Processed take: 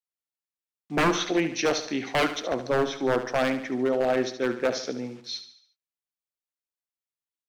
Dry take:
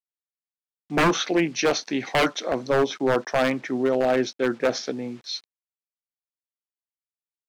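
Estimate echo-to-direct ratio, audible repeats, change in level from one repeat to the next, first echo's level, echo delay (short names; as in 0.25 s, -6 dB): -10.0 dB, 4, -6.5 dB, -11.0 dB, 72 ms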